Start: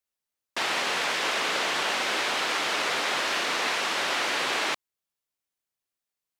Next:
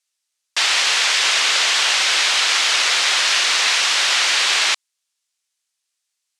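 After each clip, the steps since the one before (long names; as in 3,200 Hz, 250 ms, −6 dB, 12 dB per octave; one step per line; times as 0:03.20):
meter weighting curve ITU-R 468
level +3.5 dB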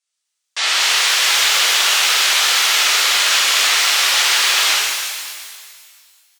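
high-pass filter 220 Hz 6 dB per octave
downsampling to 22,050 Hz
reverb with rising layers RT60 1.9 s, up +12 semitones, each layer −8 dB, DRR −6.5 dB
level −5.5 dB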